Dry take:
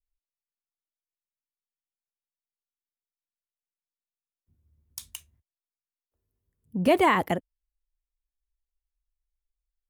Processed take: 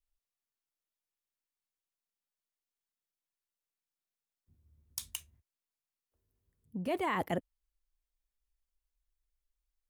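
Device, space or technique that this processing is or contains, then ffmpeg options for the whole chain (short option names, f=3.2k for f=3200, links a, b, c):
compression on the reversed sound: -af "areverse,acompressor=threshold=-30dB:ratio=10,areverse"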